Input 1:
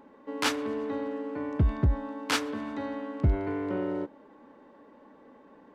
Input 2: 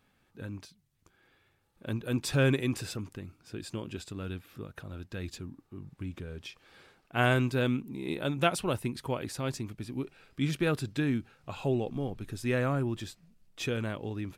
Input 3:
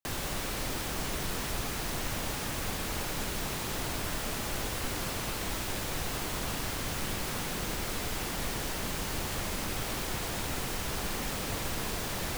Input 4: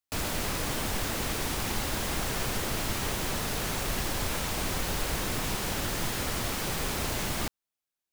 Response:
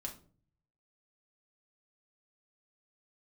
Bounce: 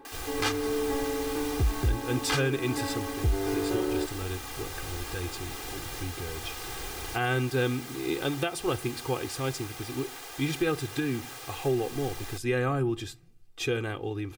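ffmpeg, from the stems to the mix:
-filter_complex "[0:a]asoftclip=type=tanh:threshold=0.0891,volume=1.06[s0];[1:a]volume=1,asplit=3[s1][s2][s3];[s2]volume=0.299[s4];[2:a]highpass=520,volume=0.398[s5];[3:a]volume=0.316[s6];[s3]apad=whole_len=358284[s7];[s6][s7]sidechaincompress=threshold=0.0126:ratio=8:attack=16:release=658[s8];[4:a]atrim=start_sample=2205[s9];[s4][s9]afir=irnorm=-1:irlink=0[s10];[s0][s1][s5][s8][s10]amix=inputs=5:normalize=0,aecho=1:1:2.5:0.8,alimiter=limit=0.141:level=0:latency=1:release=264"

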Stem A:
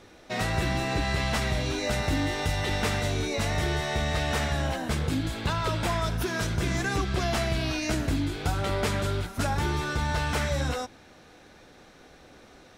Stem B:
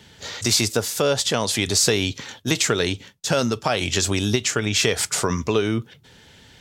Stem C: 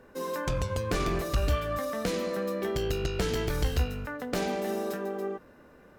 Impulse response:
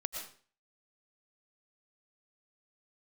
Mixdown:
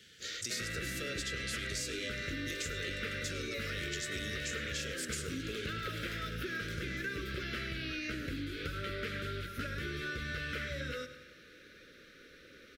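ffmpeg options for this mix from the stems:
-filter_complex "[0:a]acrossover=split=4200[s0][s1];[s1]acompressor=threshold=0.00562:ratio=4:attack=1:release=60[s2];[s0][s2]amix=inputs=2:normalize=0,equalizer=f=7800:w=1:g=-11,adelay=200,volume=1.19,asplit=2[s3][s4];[s4]volume=0.158[s5];[1:a]alimiter=limit=0.237:level=0:latency=1:release=492,volume=0.447,asplit=2[s6][s7];[s7]volume=0.15[s8];[2:a]highpass=300,acompressor=threshold=0.0112:ratio=4,adelay=2350,volume=0.841,asplit=2[s9][s10];[s10]volume=0.376[s11];[s5][s8][s11]amix=inputs=3:normalize=0,aecho=0:1:103|206|309|412|515|618|721:1|0.49|0.24|0.118|0.0576|0.0282|0.0138[s12];[s3][s6][s9][s12]amix=inputs=4:normalize=0,asuperstop=centerf=850:order=8:qfactor=1.1,lowshelf=f=400:g=-11,acompressor=threshold=0.0158:ratio=4"

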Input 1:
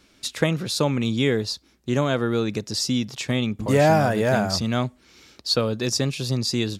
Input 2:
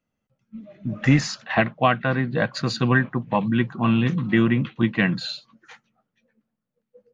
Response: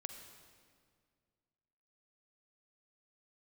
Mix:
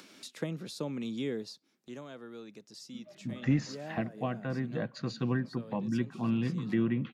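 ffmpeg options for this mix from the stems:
-filter_complex "[0:a]highpass=f=160:w=0.5412,highpass=f=160:w=1.3066,acompressor=mode=upward:threshold=0.0251:ratio=2.5,volume=0.282,afade=t=out:st=1.35:d=0.66:silence=0.266073[s0];[1:a]lowshelf=f=110:g=-8.5,adelay=2400,volume=0.398,asplit=2[s1][s2];[s2]volume=0.0944[s3];[2:a]atrim=start_sample=2205[s4];[s3][s4]afir=irnorm=-1:irlink=0[s5];[s0][s1][s5]amix=inputs=3:normalize=0,acrossover=split=490[s6][s7];[s7]acompressor=threshold=0.00501:ratio=2.5[s8];[s6][s8]amix=inputs=2:normalize=0"

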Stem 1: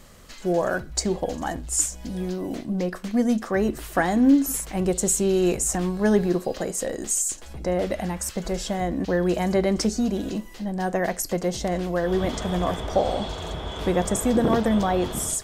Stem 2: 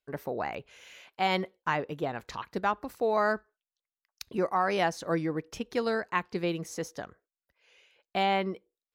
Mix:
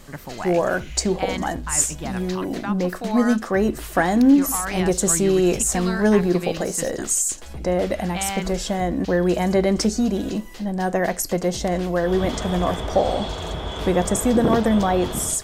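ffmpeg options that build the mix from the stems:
-filter_complex "[0:a]volume=0.631[s0];[1:a]equalizer=f=470:w=1.5:g=-14,alimiter=level_in=1.19:limit=0.0631:level=0:latency=1,volume=0.841,volume=0.891[s1];[s0][s1]amix=inputs=2:normalize=0,acontrast=86"

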